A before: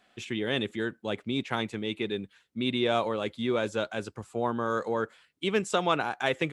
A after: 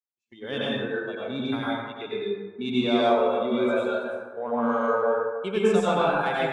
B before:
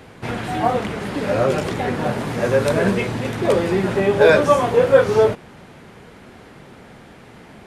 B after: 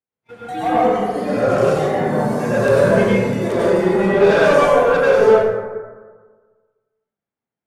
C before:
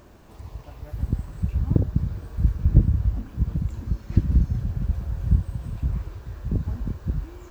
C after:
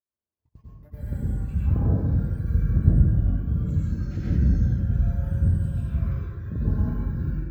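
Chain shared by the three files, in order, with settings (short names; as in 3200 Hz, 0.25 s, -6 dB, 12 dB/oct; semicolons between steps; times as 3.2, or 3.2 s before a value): spectral noise reduction 14 dB; gate -35 dBFS, range -38 dB; low shelf 84 Hz -11.5 dB; harmonic-percussive split harmonic +7 dB; soft clip -10 dBFS; plate-style reverb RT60 1.5 s, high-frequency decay 0.4×, pre-delay 80 ms, DRR -7.5 dB; gain -7 dB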